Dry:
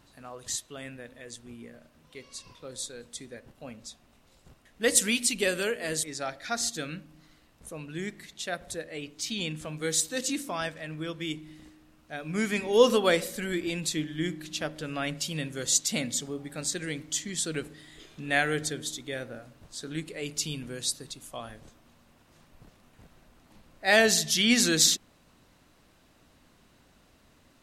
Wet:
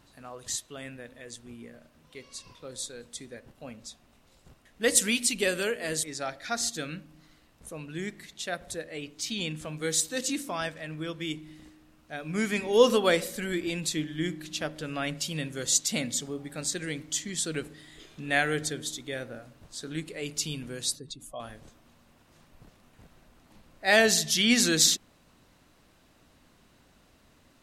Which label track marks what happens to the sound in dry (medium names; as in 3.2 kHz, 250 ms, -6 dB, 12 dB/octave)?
20.950000	21.400000	spectral contrast enhancement exponent 1.7